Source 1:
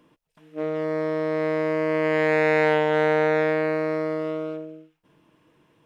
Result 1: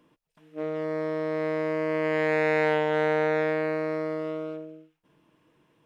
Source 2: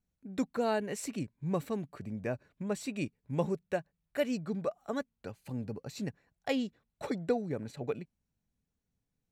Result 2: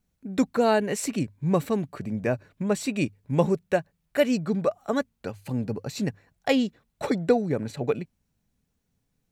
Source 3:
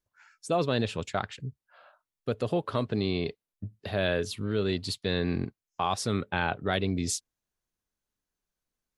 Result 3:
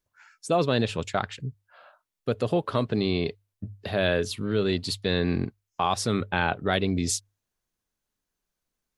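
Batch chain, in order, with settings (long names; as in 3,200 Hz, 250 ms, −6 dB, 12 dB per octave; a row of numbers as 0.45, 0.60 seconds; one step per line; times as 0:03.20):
mains-hum notches 50/100 Hz
loudness normalisation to −27 LKFS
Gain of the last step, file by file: −4.0, +9.5, +3.5 decibels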